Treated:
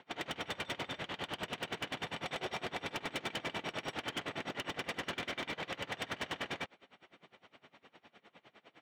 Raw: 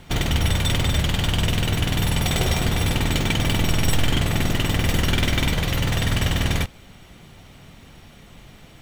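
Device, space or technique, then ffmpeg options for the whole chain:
helicopter radio: -af "highpass=380,lowpass=2900,aeval=exprs='val(0)*pow(10,-24*(0.5-0.5*cos(2*PI*9.8*n/s))/20)':channel_layout=same,asoftclip=type=hard:threshold=-29dB,volume=-3.5dB"

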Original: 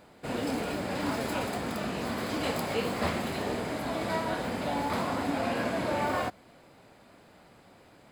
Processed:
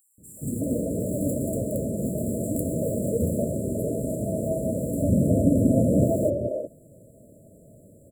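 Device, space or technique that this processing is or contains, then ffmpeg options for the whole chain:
exciter from parts: -filter_complex "[0:a]asettb=1/sr,asplit=3[link_01][link_02][link_03];[link_01]atrim=end=4.844[link_04];[link_02]atrim=start=4.84:end=5.92,asetpts=PTS-STARTPTS,afade=type=in:duration=0.004:curve=qsin,afade=type=out:start_time=1.076:duration=0.004:curve=qsin,lowshelf=frequency=440:gain=9[link_05];[link_03]atrim=start=5.916[link_06];[link_04][link_05]acrossfade=duration=0.004:curve1=hsin:curve2=qsin[link_07];[link_07][link_06]acrossfade=duration=0.004:curve1=qsin:curve2=hsin,acrossover=split=340|3400[link_08][link_09][link_10];[link_08]adelay=180[link_11];[link_09]adelay=370[link_12];[link_11][link_12][link_10]amix=inputs=3:normalize=0,afftfilt=real='re*(1-between(b*sr/4096,670,7100))':imag='im*(1-between(b*sr/4096,670,7100))':win_size=4096:overlap=0.75,asplit=2[link_13][link_14];[link_14]highpass=3700,asoftclip=type=tanh:threshold=-36dB,volume=-9.5dB[link_15];[link_13][link_15]amix=inputs=2:normalize=0,equalizer=frequency=120:width=1.3:gain=4.5,volume=7dB"

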